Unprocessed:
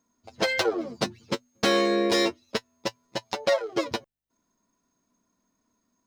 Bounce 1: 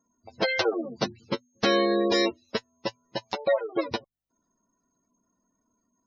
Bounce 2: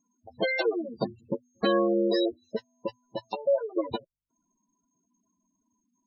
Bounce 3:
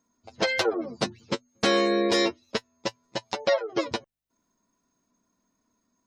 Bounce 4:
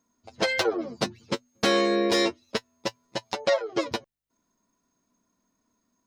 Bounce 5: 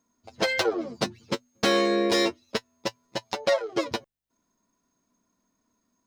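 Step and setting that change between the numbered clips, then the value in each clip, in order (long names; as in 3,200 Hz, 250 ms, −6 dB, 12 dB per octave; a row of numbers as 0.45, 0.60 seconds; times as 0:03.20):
gate on every frequency bin, under each frame's peak: −20, −10, −35, −45, −60 decibels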